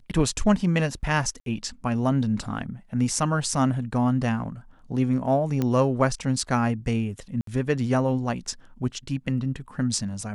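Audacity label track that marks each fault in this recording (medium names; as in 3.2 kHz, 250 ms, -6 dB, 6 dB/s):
1.400000	1.460000	dropout 62 ms
5.620000	5.620000	pop -13 dBFS
7.410000	7.470000	dropout 63 ms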